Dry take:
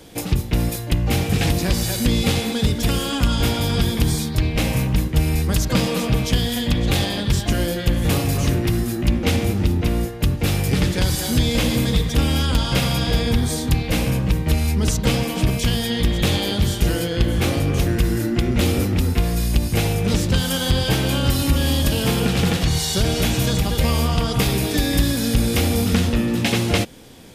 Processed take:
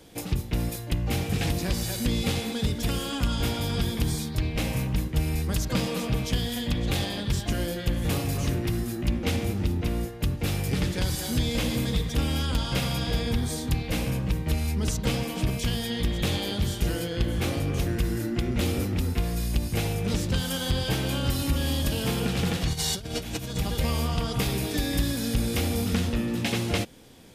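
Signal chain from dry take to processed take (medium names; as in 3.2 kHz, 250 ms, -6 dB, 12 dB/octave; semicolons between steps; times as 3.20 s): 22.73–23.57 s: compressor with a negative ratio -23 dBFS, ratio -0.5; trim -7.5 dB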